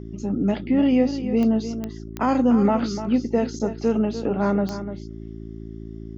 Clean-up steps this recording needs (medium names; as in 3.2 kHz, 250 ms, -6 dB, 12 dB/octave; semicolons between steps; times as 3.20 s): de-click; de-hum 55 Hz, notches 7; inverse comb 296 ms -11 dB